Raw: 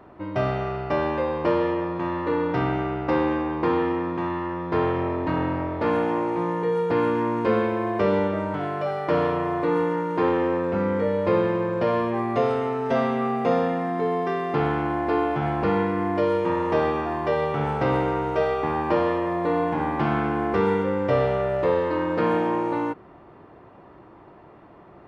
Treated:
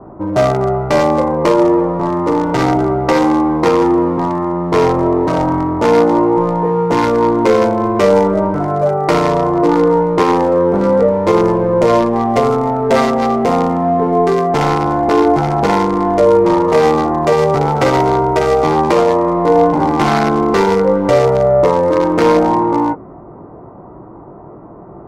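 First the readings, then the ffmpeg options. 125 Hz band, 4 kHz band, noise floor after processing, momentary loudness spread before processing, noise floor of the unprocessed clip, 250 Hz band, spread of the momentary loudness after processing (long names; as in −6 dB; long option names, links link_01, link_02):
+10.0 dB, +12.5 dB, −35 dBFS, 4 LU, −48 dBFS, +11.0 dB, 4 LU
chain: -filter_complex "[0:a]equalizer=frequency=82:width_type=o:width=0.36:gain=-8,bandreject=frequency=1700:width=11,bandreject=frequency=276.1:width_type=h:width=4,bandreject=frequency=552.2:width_type=h:width=4,bandreject=frequency=828.3:width_type=h:width=4,bandreject=frequency=1104.4:width_type=h:width=4,bandreject=frequency=1380.5:width_type=h:width=4,bandreject=frequency=1656.6:width_type=h:width=4,bandreject=frequency=1932.7:width_type=h:width=4,bandreject=frequency=2208.8:width_type=h:width=4,bandreject=frequency=2484.9:width_type=h:width=4,bandreject=frequency=2761:width_type=h:width=4,bandreject=frequency=3037.1:width_type=h:width=4,bandreject=frequency=3313.2:width_type=h:width=4,acrossover=split=290|1300[link_01][link_02][link_03];[link_01]asoftclip=type=hard:threshold=-35dB[link_04];[link_02]flanger=delay=18:depth=4:speed=0.44[link_05];[link_03]acrusher=bits=4:mix=0:aa=0.5[link_06];[link_04][link_05][link_06]amix=inputs=3:normalize=0,adynamicequalizer=threshold=0.00112:dfrequency=2100:dqfactor=6.5:tfrequency=2100:tqfactor=6.5:attack=5:release=100:ratio=0.375:range=2.5:mode=boostabove:tftype=bell,alimiter=level_in=16.5dB:limit=-1dB:release=50:level=0:latency=1" -ar 48000 -c:a libmp3lame -b:a 128k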